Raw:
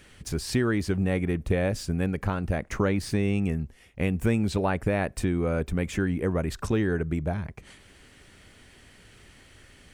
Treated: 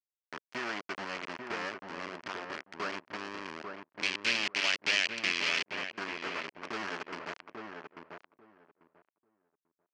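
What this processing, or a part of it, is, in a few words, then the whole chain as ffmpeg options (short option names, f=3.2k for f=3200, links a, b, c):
hand-held game console: -filter_complex "[0:a]acrusher=bits=3:mix=0:aa=0.000001,highpass=500,equalizer=f=500:t=q:w=4:g=-9,equalizer=f=790:t=q:w=4:g=-5,equalizer=f=3.7k:t=q:w=4:g=-10,lowpass=f=4.8k:w=0.5412,lowpass=f=4.8k:w=1.3066,asettb=1/sr,asplit=3[a][b][c];[a]atrim=end=4.034[d];[b]atrim=start=4.03:end=5.72,asetpts=PTS-STARTPTS,afade=t=in:d=0.004:c=qsin,afade=t=out:st=1.686:d=0.004:c=qsin,highshelf=f=1.8k:t=q:w=1.5:g=13[e];[c]atrim=start=5.716[f];[d][e]acrossfade=d=0.004:c1=hsin:c2=qsin[g];[g][f]acrossfade=d=0.004:c1=qsin:c2=hsin,asplit=2[h][i];[i]adelay=842,lowpass=f=1.2k:p=1,volume=-4dB,asplit=2[j][k];[k]adelay=842,lowpass=f=1.2k:p=1,volume=0.18,asplit=2[l][m];[m]adelay=842,lowpass=f=1.2k:p=1,volume=0.18[n];[h][j][l][n]amix=inputs=4:normalize=0,volume=-7dB"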